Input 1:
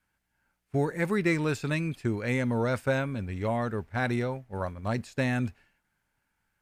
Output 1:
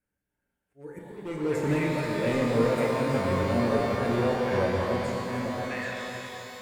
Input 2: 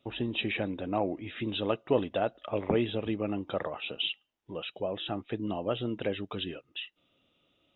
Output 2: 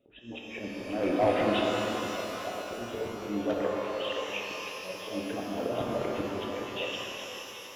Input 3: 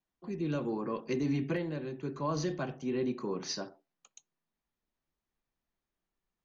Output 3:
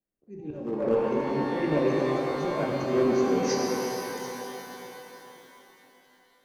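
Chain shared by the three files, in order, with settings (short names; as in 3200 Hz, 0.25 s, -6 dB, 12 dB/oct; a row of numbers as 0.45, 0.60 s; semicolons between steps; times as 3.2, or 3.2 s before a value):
gate -57 dBFS, range -13 dB; reverb removal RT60 0.57 s; ten-band EQ 250 Hz +3 dB, 500 Hz +8 dB, 1000 Hz -10 dB, 4000 Hz -12 dB; delay with a stepping band-pass 0.259 s, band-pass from 830 Hz, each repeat 1.4 oct, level 0 dB; compressor 2.5:1, threshold -32 dBFS; auto swell 0.137 s; hard clip -29 dBFS; auto swell 0.453 s; shimmer reverb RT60 3.8 s, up +12 st, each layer -8 dB, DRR -2.5 dB; normalise peaks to -12 dBFS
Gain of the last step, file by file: +5.5, +10.0, +9.5 dB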